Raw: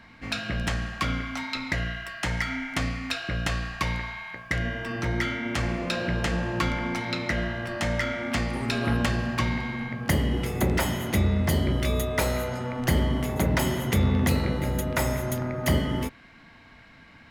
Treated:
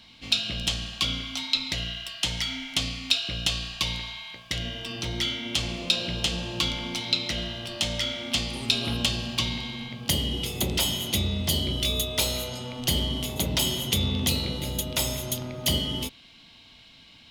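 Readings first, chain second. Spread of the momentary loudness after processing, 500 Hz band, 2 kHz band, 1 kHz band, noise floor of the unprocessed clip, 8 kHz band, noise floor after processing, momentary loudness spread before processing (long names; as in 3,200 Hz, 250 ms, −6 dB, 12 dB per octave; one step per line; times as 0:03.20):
7 LU, −5.5 dB, −5.0 dB, −7.5 dB, −51 dBFS, +6.5 dB, −52 dBFS, 6 LU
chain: high shelf with overshoot 2,400 Hz +10.5 dB, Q 3
level −5 dB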